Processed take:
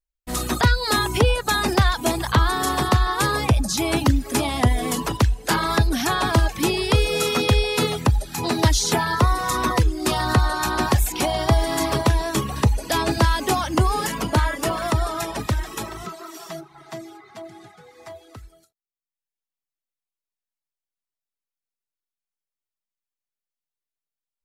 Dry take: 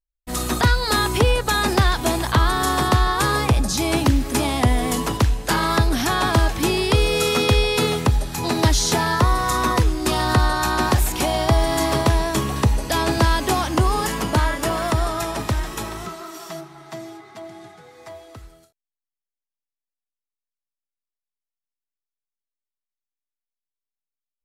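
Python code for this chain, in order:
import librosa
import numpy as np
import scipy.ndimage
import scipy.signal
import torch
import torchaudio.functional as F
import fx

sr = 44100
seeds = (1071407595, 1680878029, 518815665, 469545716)

y = fx.dereverb_blind(x, sr, rt60_s=0.71)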